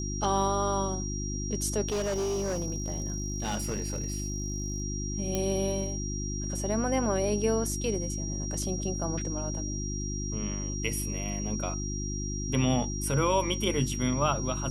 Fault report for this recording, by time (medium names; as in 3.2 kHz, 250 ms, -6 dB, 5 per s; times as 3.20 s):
hum 50 Hz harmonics 7 -34 dBFS
whine 5.7 kHz -37 dBFS
1.88–4.82 s: clipped -26.5 dBFS
5.35 s: pop -15 dBFS